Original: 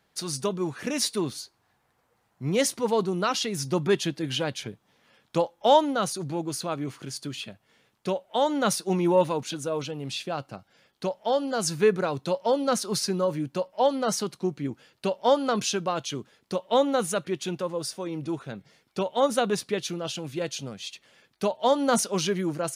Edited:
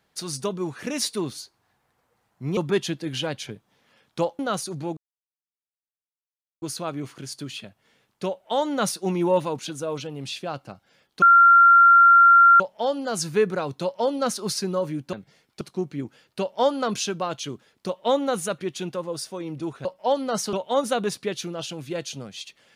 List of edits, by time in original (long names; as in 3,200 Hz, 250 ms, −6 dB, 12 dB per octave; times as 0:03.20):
0:02.57–0:03.74: remove
0:05.56–0:05.88: remove
0:06.46: splice in silence 1.65 s
0:11.06: insert tone 1,380 Hz −9.5 dBFS 1.38 s
0:13.59–0:14.27: swap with 0:18.51–0:18.99